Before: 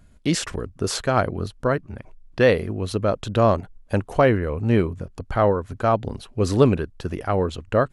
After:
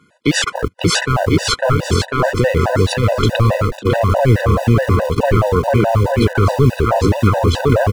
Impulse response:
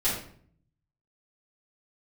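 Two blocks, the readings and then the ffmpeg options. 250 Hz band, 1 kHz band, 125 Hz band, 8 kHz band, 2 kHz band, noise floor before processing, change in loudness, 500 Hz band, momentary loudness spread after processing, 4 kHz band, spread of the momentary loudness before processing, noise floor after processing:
+6.5 dB, +7.0 dB, +11.0 dB, n/a, +8.5 dB, -52 dBFS, +7.5 dB, +5.0 dB, 3 LU, +12.0 dB, 10 LU, -40 dBFS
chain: -filter_complex "[0:a]aecho=1:1:550|1045|1490|1891|2252:0.631|0.398|0.251|0.158|0.1,agate=range=-15dB:threshold=-29dB:ratio=16:detection=peak,asplit=2[a][b];[b]highpass=f=720:p=1,volume=13dB,asoftclip=type=tanh:threshold=-3dB[c];[a][c]amix=inputs=2:normalize=0,lowpass=f=2.1k:p=1,volume=-6dB,acrossover=split=120[d][e];[d]acrusher=bits=7:mix=0:aa=0.000001[f];[e]acompressor=threshold=-30dB:ratio=10[g];[f][g]amix=inputs=2:normalize=0,alimiter=level_in=24.5dB:limit=-1dB:release=50:level=0:latency=1,afftfilt=real='re*gt(sin(2*PI*4.7*pts/sr)*(1-2*mod(floor(b*sr/1024/500),2)),0)':imag='im*gt(sin(2*PI*4.7*pts/sr)*(1-2*mod(floor(b*sr/1024/500),2)),0)':win_size=1024:overlap=0.75,volume=-1dB"

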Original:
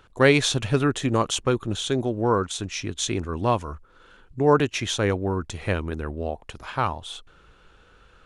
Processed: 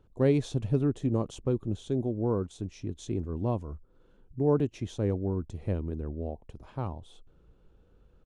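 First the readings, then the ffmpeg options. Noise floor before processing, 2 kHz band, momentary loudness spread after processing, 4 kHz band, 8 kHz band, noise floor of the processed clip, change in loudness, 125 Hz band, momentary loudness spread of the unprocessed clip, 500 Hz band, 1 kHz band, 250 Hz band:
-56 dBFS, -22.5 dB, 13 LU, -21.0 dB, -20.0 dB, -62 dBFS, -6.5 dB, -3.0 dB, 14 LU, -7.0 dB, -15.5 dB, -4.0 dB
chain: -af "firequalizer=gain_entry='entry(210,0);entry(1400,-20);entry(5000,-17)':delay=0.05:min_phase=1,volume=-3dB"

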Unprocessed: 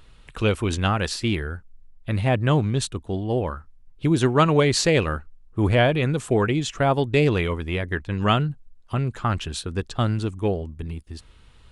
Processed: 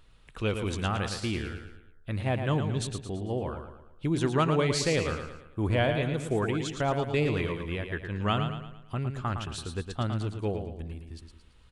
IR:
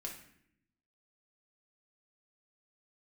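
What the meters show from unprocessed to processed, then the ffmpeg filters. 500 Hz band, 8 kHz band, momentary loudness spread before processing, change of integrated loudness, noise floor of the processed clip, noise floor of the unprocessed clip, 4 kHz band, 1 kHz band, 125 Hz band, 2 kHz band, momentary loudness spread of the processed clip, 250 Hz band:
-7.0 dB, -7.0 dB, 15 LU, -7.0 dB, -56 dBFS, -51 dBFS, -7.0 dB, -7.0 dB, -7.0 dB, -7.0 dB, 13 LU, -7.0 dB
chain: -af "aecho=1:1:112|224|336|448|560:0.447|0.197|0.0865|0.0381|0.0167,volume=-8dB"

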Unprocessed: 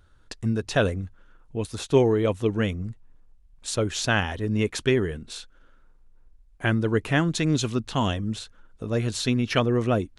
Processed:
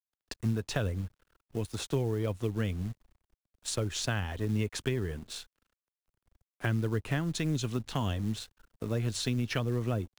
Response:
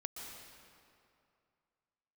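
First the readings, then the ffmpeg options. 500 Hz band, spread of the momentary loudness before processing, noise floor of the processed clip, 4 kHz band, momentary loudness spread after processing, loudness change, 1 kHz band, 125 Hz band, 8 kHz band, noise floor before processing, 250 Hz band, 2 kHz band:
-11.0 dB, 14 LU, under -85 dBFS, -7.0 dB, 10 LU, -8.0 dB, -10.5 dB, -4.5 dB, -5.5 dB, -56 dBFS, -8.5 dB, -10.5 dB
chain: -filter_complex "[0:a]acrusher=bits=6:mode=log:mix=0:aa=0.000001,aeval=exprs='sgn(val(0))*max(abs(val(0))-0.00398,0)':c=same,acrossover=split=130[a][b];[b]acompressor=threshold=-29dB:ratio=6[c];[a][c]amix=inputs=2:normalize=0,volume=-1.5dB"

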